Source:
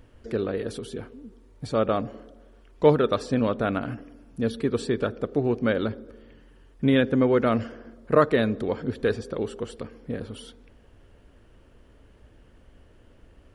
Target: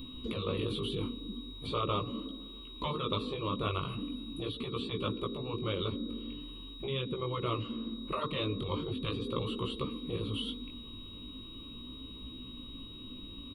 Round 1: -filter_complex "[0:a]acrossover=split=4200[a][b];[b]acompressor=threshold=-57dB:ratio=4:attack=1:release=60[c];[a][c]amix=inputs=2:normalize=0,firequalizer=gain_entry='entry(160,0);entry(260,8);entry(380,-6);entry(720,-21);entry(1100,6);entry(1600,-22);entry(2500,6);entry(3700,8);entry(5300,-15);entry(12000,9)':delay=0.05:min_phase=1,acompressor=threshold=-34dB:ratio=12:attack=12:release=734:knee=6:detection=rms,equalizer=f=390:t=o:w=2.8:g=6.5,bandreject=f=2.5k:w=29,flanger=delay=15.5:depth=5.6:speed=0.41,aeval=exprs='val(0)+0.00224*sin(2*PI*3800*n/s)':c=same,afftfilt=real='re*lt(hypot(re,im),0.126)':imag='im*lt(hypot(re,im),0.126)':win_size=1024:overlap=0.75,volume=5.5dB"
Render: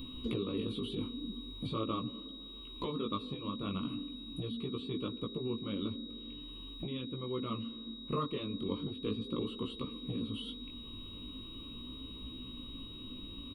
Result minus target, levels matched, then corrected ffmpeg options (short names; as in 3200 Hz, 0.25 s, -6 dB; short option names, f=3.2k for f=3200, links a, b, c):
compressor: peak gain reduction +9.5 dB
-filter_complex "[0:a]acrossover=split=4200[a][b];[b]acompressor=threshold=-57dB:ratio=4:attack=1:release=60[c];[a][c]amix=inputs=2:normalize=0,firequalizer=gain_entry='entry(160,0);entry(260,8);entry(380,-6);entry(720,-21);entry(1100,6);entry(1600,-22);entry(2500,6);entry(3700,8);entry(5300,-15);entry(12000,9)':delay=0.05:min_phase=1,acompressor=threshold=-23.5dB:ratio=12:attack=12:release=734:knee=6:detection=rms,equalizer=f=390:t=o:w=2.8:g=6.5,bandreject=f=2.5k:w=29,flanger=delay=15.5:depth=5.6:speed=0.41,aeval=exprs='val(0)+0.00224*sin(2*PI*3800*n/s)':c=same,afftfilt=real='re*lt(hypot(re,im),0.126)':imag='im*lt(hypot(re,im),0.126)':win_size=1024:overlap=0.75,volume=5.5dB"